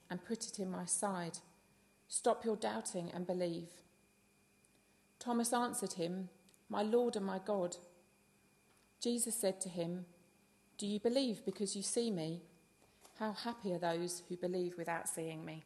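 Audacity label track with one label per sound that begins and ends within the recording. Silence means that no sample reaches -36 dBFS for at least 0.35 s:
2.130000	3.590000	sound
5.210000	6.210000	sound
6.730000	7.730000	sound
9.030000	9.950000	sound
10.800000	12.350000	sound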